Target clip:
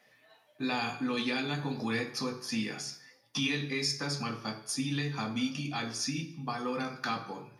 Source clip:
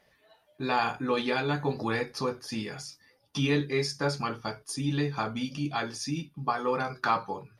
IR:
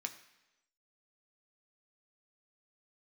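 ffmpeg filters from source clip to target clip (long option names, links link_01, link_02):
-filter_complex "[0:a]acrossover=split=410|3000[link_01][link_02][link_03];[link_02]acompressor=threshold=-42dB:ratio=2[link_04];[link_01][link_04][link_03]amix=inputs=3:normalize=0,acrossover=split=790[link_05][link_06];[link_05]alimiter=level_in=2dB:limit=-24dB:level=0:latency=1,volume=-2dB[link_07];[link_07][link_06]amix=inputs=2:normalize=0[link_08];[1:a]atrim=start_sample=2205,afade=type=out:start_time=0.38:duration=0.01,atrim=end_sample=17199[link_09];[link_08][link_09]afir=irnorm=-1:irlink=0,volume=3.5dB"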